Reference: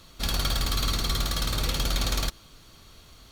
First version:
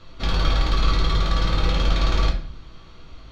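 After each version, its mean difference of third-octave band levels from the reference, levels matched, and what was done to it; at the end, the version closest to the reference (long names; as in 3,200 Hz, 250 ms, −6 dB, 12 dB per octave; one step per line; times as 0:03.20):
7.0 dB: high-frequency loss of the air 200 metres
rectangular room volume 55 cubic metres, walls mixed, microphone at 0.64 metres
level +3.5 dB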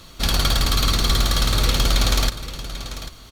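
3.0 dB: on a send: single-tap delay 792 ms −12.5 dB
on the sum: highs frequency-modulated by the lows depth 0.11 ms
level +7.5 dB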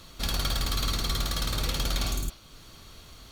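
2.0 dB: in parallel at −1 dB: downward compressor, threshold −40 dBFS, peak gain reduction 17 dB
on the sum: healed spectral selection 0:02.07–0:02.39, 430–6,200 Hz both
level −3 dB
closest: third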